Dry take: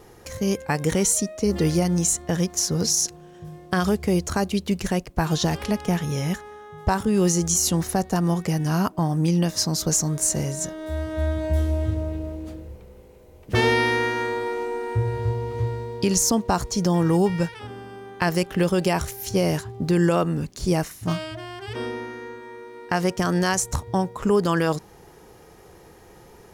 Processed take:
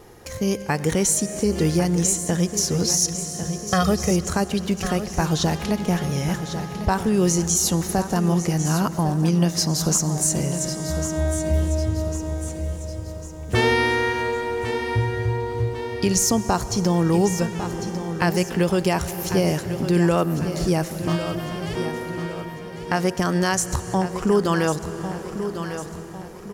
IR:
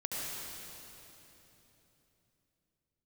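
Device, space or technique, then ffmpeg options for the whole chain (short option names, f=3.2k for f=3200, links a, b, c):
ducked reverb: -filter_complex "[0:a]asettb=1/sr,asplit=3[a][b][c];[a]atrim=end=3.014[d];[b]atrim=start=3.01:end=4.11,asetpts=PTS-STARTPTS,afade=t=in:d=0.004:c=qsin,afade=t=out:st=1.096:d=0.004:c=qsin,aecho=1:1:1.6:0.93,atrim=end_sample=48510[e];[c]atrim=start=4.106[f];[d][e]acrossfade=d=0.004:c1=hsin:c2=qsin[g];[g][f]acrossfade=d=0.004:c1=qsin:c2=hsin,aecho=1:1:1100|2200|3300|4400:0.282|0.121|0.0521|0.0224,asplit=3[h][i][j];[1:a]atrim=start_sample=2205[k];[i][k]afir=irnorm=-1:irlink=0[l];[j]apad=whole_len=1212881[m];[l][m]sidechaincompress=threshold=-24dB:ratio=8:attack=9.1:release=459,volume=-10dB[n];[h][n]amix=inputs=2:normalize=0"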